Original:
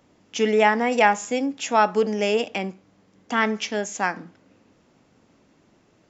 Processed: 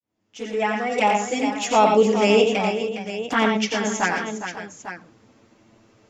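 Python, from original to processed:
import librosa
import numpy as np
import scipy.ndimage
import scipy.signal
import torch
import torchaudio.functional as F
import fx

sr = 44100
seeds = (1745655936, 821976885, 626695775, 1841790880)

y = fx.fade_in_head(x, sr, length_s=1.63)
y = fx.env_flanger(y, sr, rest_ms=9.3, full_db=-17.5)
y = fx.echo_multitap(y, sr, ms=(89, 113, 410, 542, 850), db=(-6.0, -7.5, -9.5, -14.5, -11.5))
y = y * librosa.db_to_amplitude(5.0)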